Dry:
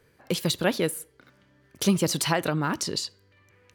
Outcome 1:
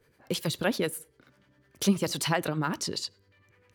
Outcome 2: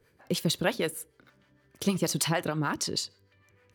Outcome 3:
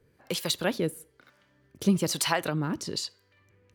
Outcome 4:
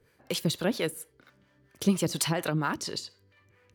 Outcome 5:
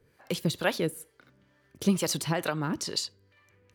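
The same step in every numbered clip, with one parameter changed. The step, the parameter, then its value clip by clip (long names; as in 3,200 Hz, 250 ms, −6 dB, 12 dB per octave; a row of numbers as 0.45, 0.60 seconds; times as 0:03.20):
two-band tremolo in antiphase, speed: 10, 6.5, 1.1, 4.3, 2.2 Hertz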